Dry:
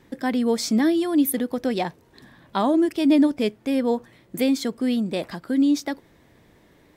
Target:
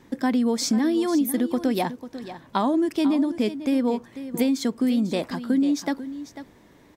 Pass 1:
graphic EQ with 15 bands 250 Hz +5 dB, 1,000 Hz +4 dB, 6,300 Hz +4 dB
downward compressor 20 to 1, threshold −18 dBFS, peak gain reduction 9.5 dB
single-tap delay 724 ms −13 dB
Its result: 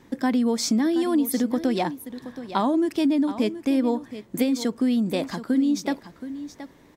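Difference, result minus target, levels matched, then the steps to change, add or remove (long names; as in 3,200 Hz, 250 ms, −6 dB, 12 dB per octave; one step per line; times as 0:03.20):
echo 229 ms late
change: single-tap delay 495 ms −13 dB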